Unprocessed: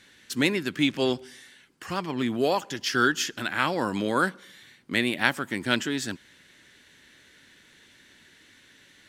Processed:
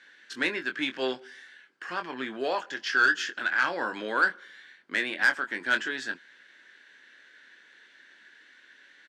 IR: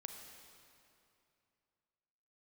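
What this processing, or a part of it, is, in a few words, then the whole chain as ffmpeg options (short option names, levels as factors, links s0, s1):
intercom: -filter_complex "[0:a]highpass=370,lowpass=4900,equalizer=f=1600:t=o:w=0.41:g=11,asoftclip=type=tanh:threshold=0.299,asplit=2[s0][s1];[s1]adelay=23,volume=0.398[s2];[s0][s2]amix=inputs=2:normalize=0,volume=0.631"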